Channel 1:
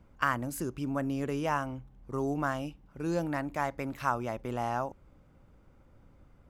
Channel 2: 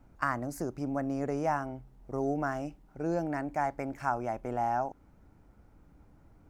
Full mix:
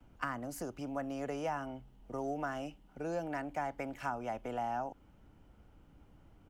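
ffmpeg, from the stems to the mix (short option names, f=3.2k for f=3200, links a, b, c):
-filter_complex "[0:a]volume=-14dB[a];[1:a]equalizer=f=3k:t=o:w=0.34:g=13,adelay=4.5,volume=-2dB[b];[a][b]amix=inputs=2:normalize=0,acrossover=split=150|430[c][d][e];[c]acompressor=threshold=-50dB:ratio=4[f];[d]acompressor=threshold=-46dB:ratio=4[g];[e]acompressor=threshold=-34dB:ratio=4[h];[f][g][h]amix=inputs=3:normalize=0"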